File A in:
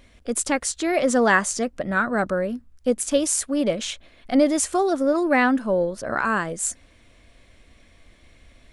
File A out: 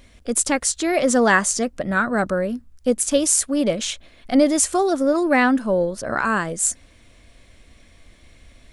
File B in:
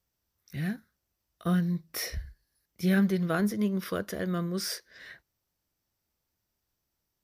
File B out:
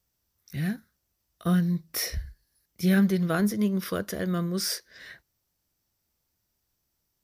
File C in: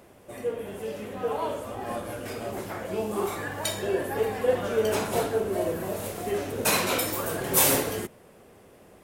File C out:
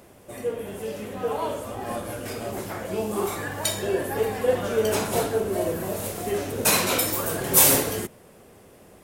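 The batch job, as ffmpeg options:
-af "bass=f=250:g=2,treble=f=4k:g=4,volume=1.5dB"

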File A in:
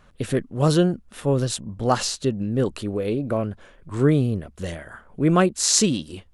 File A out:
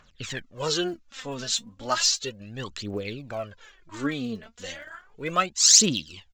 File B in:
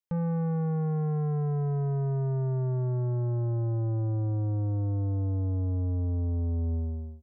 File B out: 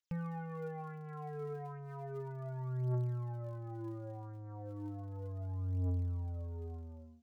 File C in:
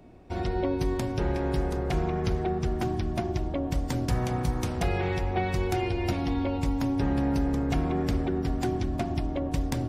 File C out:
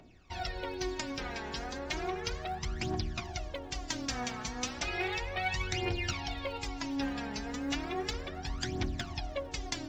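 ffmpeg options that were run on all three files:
-af "aresample=16000,aresample=44100,aphaser=in_gain=1:out_gain=1:delay=4.7:decay=0.69:speed=0.34:type=triangular,tiltshelf=f=1.1k:g=-9,volume=-6dB"

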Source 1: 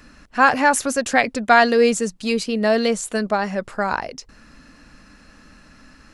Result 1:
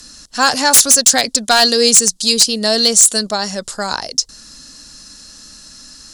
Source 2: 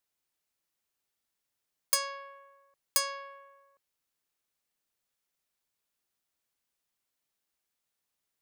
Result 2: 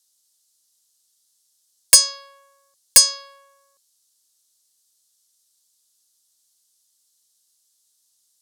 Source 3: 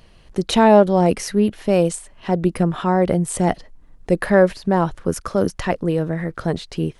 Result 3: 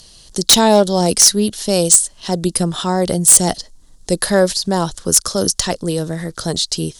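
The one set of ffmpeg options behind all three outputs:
-filter_complex "[0:a]lowpass=10k,acrossover=split=650|1800[a][b][c];[c]aexciter=amount=12.5:drive=4.3:freq=3.5k[d];[a][b][d]amix=inputs=3:normalize=0,aeval=exprs='0.891*(abs(mod(val(0)/0.891+3,4)-2)-1)':c=same"

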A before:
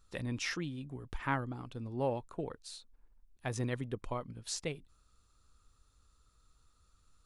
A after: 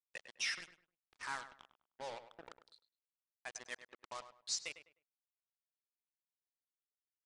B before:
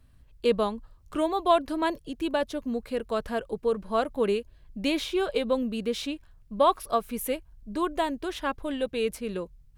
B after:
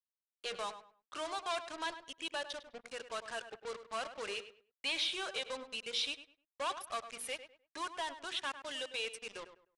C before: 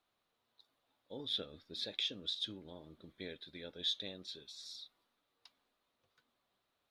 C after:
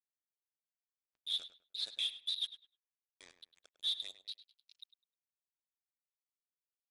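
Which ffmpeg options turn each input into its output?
-filter_complex "[0:a]asplit=2[a][b];[b]highpass=f=720:p=1,volume=18dB,asoftclip=type=tanh:threshold=-9.5dB[c];[a][c]amix=inputs=2:normalize=0,lowpass=f=1.4k:p=1,volume=-6dB,afftdn=nr=28:nf=-40,aderivative,asoftclip=type=tanh:threshold=-32.5dB,bandreject=f=60:t=h:w=6,bandreject=f=120:t=h:w=6,bandreject=f=180:t=h:w=6,bandreject=f=240:t=h:w=6,bandreject=f=300:t=h:w=6,bandreject=f=360:t=h:w=6,bandreject=f=420:t=h:w=6,bandreject=f=480:t=h:w=6,acrusher=bits=7:mix=0:aa=0.5,asplit=2[d][e];[e]adelay=102,lowpass=f=2.7k:p=1,volume=-11dB,asplit=2[f][g];[g]adelay=102,lowpass=f=2.7k:p=1,volume=0.27,asplit=2[h][i];[i]adelay=102,lowpass=f=2.7k:p=1,volume=0.27[j];[d][f][h][j]amix=inputs=4:normalize=0,aresample=22050,aresample=44100,adynamicequalizer=threshold=0.00126:dfrequency=2300:dqfactor=0.7:tfrequency=2300:tqfactor=0.7:attack=5:release=100:ratio=0.375:range=2.5:mode=boostabove:tftype=highshelf,volume=2dB"

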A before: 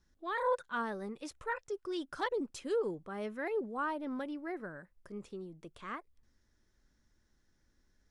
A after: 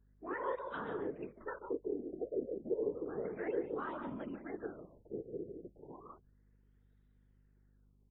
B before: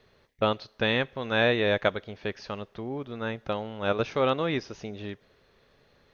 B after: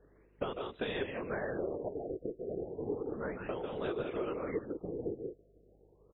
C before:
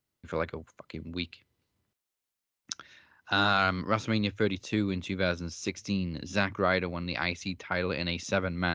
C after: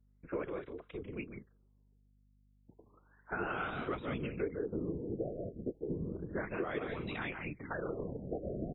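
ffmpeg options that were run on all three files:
-af "equalizer=f=400:w=6.7:g=14.5,aecho=1:1:145.8|180.8:0.398|0.282,acompressor=threshold=-26dB:ratio=6,afftfilt=real='hypot(re,im)*cos(2*PI*random(0))':imag='hypot(re,im)*sin(2*PI*random(1))':win_size=512:overlap=0.75,aeval=exprs='val(0)+0.000501*(sin(2*PI*50*n/s)+sin(2*PI*2*50*n/s)/2+sin(2*PI*3*50*n/s)/3+sin(2*PI*4*50*n/s)/4+sin(2*PI*5*50*n/s)/5)':c=same,acontrast=38,afftfilt=real='re*lt(b*sr/1024,720*pow(4000/720,0.5+0.5*sin(2*PI*0.32*pts/sr)))':imag='im*lt(b*sr/1024,720*pow(4000/720,0.5+0.5*sin(2*PI*0.32*pts/sr)))':win_size=1024:overlap=0.75,volume=-6.5dB"

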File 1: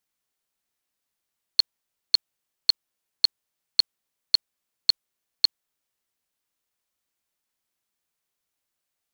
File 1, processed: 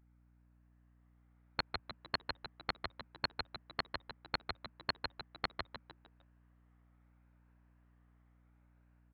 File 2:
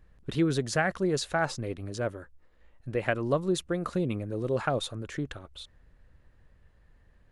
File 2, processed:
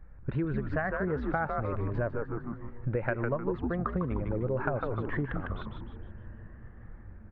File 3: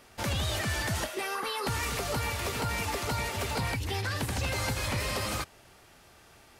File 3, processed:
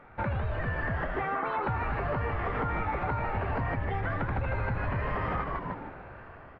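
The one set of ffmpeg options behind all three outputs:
-filter_complex "[0:a]afftfilt=real='re*pow(10,6/40*sin(2*PI*(1.4*log(max(b,1)*sr/1024/100)/log(2)-(0.71)*(pts-256)/sr)))':imag='im*pow(10,6/40*sin(2*PI*(1.4*log(max(b,1)*sr/1024/100)/log(2)-(0.71)*(pts-256)/sr)))':win_size=1024:overlap=0.75,equalizer=f=330:t=o:w=1.4:g=-5,dynaudnorm=f=690:g=3:m=6dB,lowpass=f=1.8k:w=0.5412,lowpass=f=1.8k:w=1.3066,asplit=6[a][b][c][d][e][f];[b]adelay=152,afreqshift=-120,volume=-5dB[g];[c]adelay=304,afreqshift=-240,volume=-12.5dB[h];[d]adelay=456,afreqshift=-360,volume=-20.1dB[i];[e]adelay=608,afreqshift=-480,volume=-27.6dB[j];[f]adelay=760,afreqshift=-600,volume=-35.1dB[k];[a][g][h][i][j][k]amix=inputs=6:normalize=0,acompressor=threshold=-34dB:ratio=6,aeval=exprs='val(0)+0.000251*(sin(2*PI*60*n/s)+sin(2*PI*2*60*n/s)/2+sin(2*PI*3*60*n/s)/3+sin(2*PI*4*60*n/s)/4+sin(2*PI*5*60*n/s)/5)':c=same,volume=6dB"

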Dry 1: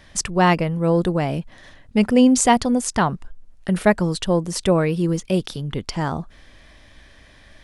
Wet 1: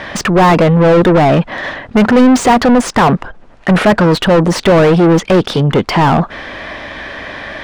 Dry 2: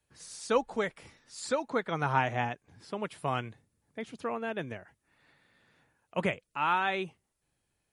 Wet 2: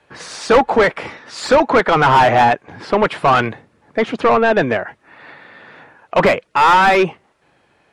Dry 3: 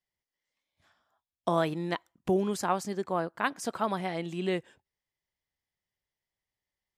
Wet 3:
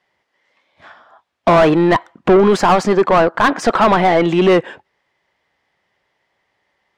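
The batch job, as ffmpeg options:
-filter_complex "[0:a]acontrast=50,aemphasis=mode=reproduction:type=50fm,asplit=2[a][b];[b]highpass=f=720:p=1,volume=32dB,asoftclip=type=tanh:threshold=-1dB[c];[a][c]amix=inputs=2:normalize=0,lowpass=f=1.4k:p=1,volume=-6dB"

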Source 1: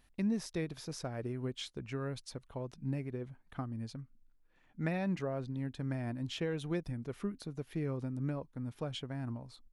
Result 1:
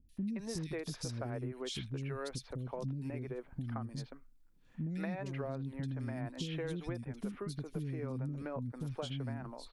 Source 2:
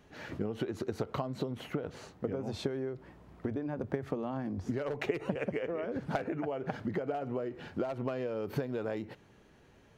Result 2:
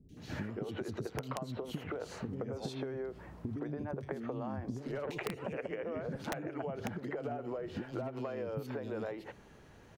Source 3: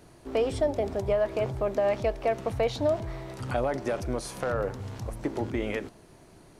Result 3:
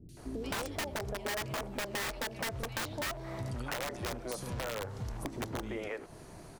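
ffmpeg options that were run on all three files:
-filter_complex "[0:a]acrossover=split=320|2900[a][b][c];[c]adelay=90[d];[b]adelay=170[e];[a][e][d]amix=inputs=3:normalize=0,aeval=exprs='(mod(12.6*val(0)+1,2)-1)/12.6':c=same,acompressor=threshold=-40dB:ratio=6,volume=4.5dB"

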